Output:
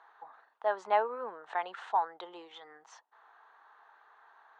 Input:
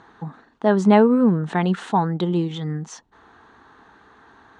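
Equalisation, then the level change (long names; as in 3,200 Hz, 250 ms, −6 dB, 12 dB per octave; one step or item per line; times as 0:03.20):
high-pass filter 660 Hz 24 dB per octave
high-frequency loss of the air 67 metres
high-shelf EQ 2,200 Hz −10.5 dB
−5.0 dB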